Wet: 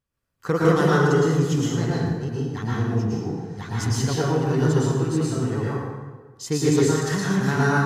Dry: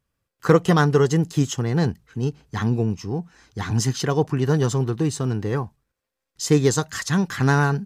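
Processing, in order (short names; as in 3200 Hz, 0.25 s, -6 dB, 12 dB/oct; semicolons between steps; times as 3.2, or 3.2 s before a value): plate-style reverb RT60 1.4 s, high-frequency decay 0.65×, pre-delay 0.1 s, DRR -7 dB; gain -8 dB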